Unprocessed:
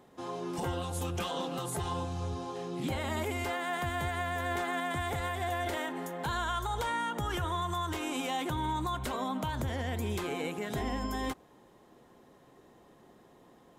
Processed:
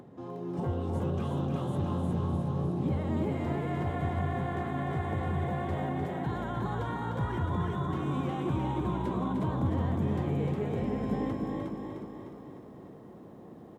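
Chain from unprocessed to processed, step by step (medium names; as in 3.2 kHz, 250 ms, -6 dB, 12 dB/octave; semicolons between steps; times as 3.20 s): high-pass 92 Hz 24 dB/octave; tilt EQ -4.5 dB/octave; upward compressor, threshold -36 dBFS; frequency-shifting echo 361 ms, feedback 32%, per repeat +54 Hz, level -3 dB; bit-crushed delay 303 ms, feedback 55%, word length 11-bit, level -5.5 dB; trim -7 dB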